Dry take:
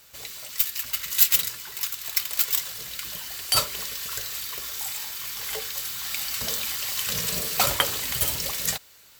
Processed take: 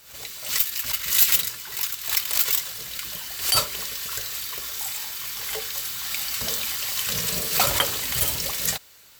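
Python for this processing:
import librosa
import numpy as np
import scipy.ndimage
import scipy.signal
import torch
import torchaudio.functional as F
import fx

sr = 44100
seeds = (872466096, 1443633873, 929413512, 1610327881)

y = 10.0 ** (-8.0 / 20.0) * np.tanh(x / 10.0 ** (-8.0 / 20.0))
y = fx.pre_swell(y, sr, db_per_s=100.0)
y = y * librosa.db_to_amplitude(1.5)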